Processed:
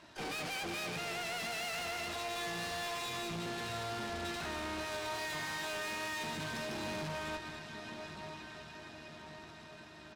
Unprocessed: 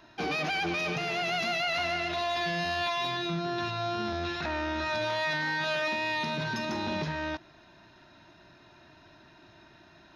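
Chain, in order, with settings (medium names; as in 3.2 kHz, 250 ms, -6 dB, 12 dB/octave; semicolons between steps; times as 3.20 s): CVSD coder 32 kbps; high-pass 49 Hz 24 dB/octave; on a send: echo that smears into a reverb 1191 ms, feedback 51%, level -14 dB; on the sum: harmony voices -7 st -10 dB, +3 st -15 dB, +12 st -12 dB; valve stage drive 38 dB, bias 0.55; delay 203 ms -10.5 dB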